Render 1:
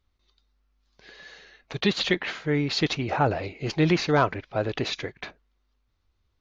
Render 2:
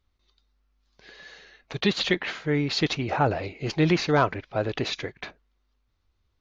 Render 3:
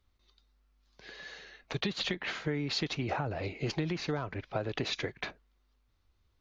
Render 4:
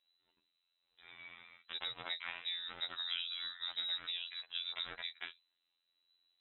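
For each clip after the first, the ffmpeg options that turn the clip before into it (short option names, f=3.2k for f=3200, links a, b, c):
-af anull
-filter_complex "[0:a]acrossover=split=190[a][b];[b]alimiter=limit=-16dB:level=0:latency=1:release=314[c];[a][c]amix=inputs=2:normalize=0,acompressor=threshold=-29dB:ratio=12"
-filter_complex "[0:a]acrossover=split=3100[a][b];[b]acompressor=threshold=-42dB:ratio=4:attack=1:release=60[c];[a][c]amix=inputs=2:normalize=0,afftfilt=real='hypot(re,im)*cos(PI*b)':imag='0':win_size=2048:overlap=0.75,lowpass=f=3.4k:t=q:w=0.5098,lowpass=f=3.4k:t=q:w=0.6013,lowpass=f=3.4k:t=q:w=0.9,lowpass=f=3.4k:t=q:w=2.563,afreqshift=-4000,volume=-3dB"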